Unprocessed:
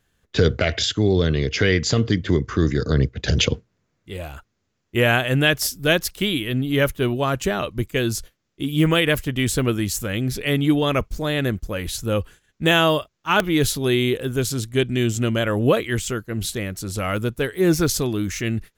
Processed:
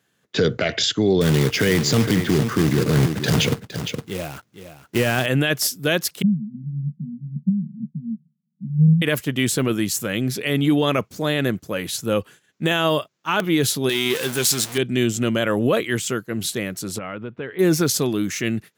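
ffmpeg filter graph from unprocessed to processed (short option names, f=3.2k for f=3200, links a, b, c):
-filter_complex "[0:a]asettb=1/sr,asplit=3[a][b][c];[a]atrim=end=1.214[d];[b]atrim=start=1.21:end=5.26,asetpts=PTS-STARTPTS,afade=t=in:d=0.004:c=qsin,afade=t=out:st=4.046:d=0.004:c=qsin,lowshelf=f=270:g=8,acrusher=bits=3:mode=log:mix=0:aa=0.000001,aecho=1:1:462:0.251,atrim=end_sample=178605[e];[c]atrim=start=5.256[f];[d][e]acrossfade=d=0.004:c1=hsin:c2=qsin[g];[g][f]acrossfade=d=0.004:c1=qsin:c2=hsin,asettb=1/sr,asplit=3[h][i][j];[h]atrim=end=6.224[k];[i]atrim=start=6.22:end=9.02,asetpts=PTS-STARTPTS,afade=t=in:d=0.004:c=qsin,afade=t=out:st=2.796:d=0.004:c=qsin,asuperpass=centerf=180:order=12:qfactor=2.2,acontrast=79[l];[j]atrim=start=9.016[m];[k][l]acrossfade=d=0.004:c1=hsin:c2=qsin[n];[n][m]acrossfade=d=0.004:c1=qsin:c2=hsin,asettb=1/sr,asplit=3[o][p][q];[o]atrim=end=13.894[r];[p]atrim=start=13.89:end=14.78,asetpts=PTS-STARTPTS,afade=t=in:d=0.004:c=qsin,afade=t=out:st=0.886:d=0.004:c=qsin,aeval=exprs='val(0)+0.5*0.0473*sgn(val(0))':c=same,tiltshelf=f=1.1k:g=-6,asplit=2[s][t];[t]adelay=13,volume=-11dB[u];[s][u]amix=inputs=2:normalize=0,atrim=end_sample=39249[v];[q]atrim=start=14.776[w];[r][v]acrossfade=d=0.004:c1=hsin:c2=qsin[x];[x][w]acrossfade=d=0.004:c1=qsin:c2=hsin,asettb=1/sr,asplit=3[y][z][aa];[y]atrim=end=16.984[ab];[z]atrim=start=16.98:end=17.59,asetpts=PTS-STARTPTS,afade=t=in:d=0.004:c=qsin,afade=t=out:st=0.606:d=0.004:c=qsin,lowpass=f=2.9k:w=0.5412,lowpass=f=2.9k:w=1.3066,acompressor=threshold=-29dB:ratio=4:attack=3.2:release=140:knee=1:detection=peak[ac];[aa]atrim=start=17.586[ad];[ab][ac]acrossfade=d=0.004:c1=hsin:c2=qsin[ae];[ae][ad]acrossfade=d=0.004:c1=qsin:c2=hsin,highpass=f=130:w=0.5412,highpass=f=130:w=1.3066,alimiter=limit=-11dB:level=0:latency=1:release=19,volume=2dB"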